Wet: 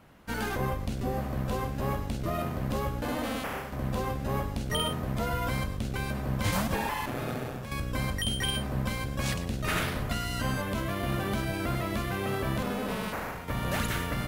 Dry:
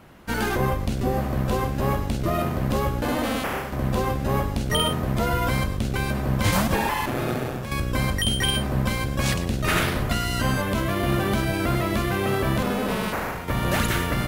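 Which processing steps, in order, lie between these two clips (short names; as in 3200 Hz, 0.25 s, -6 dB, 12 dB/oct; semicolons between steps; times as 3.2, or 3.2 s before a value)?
notch 360 Hz, Q 12; gain -7 dB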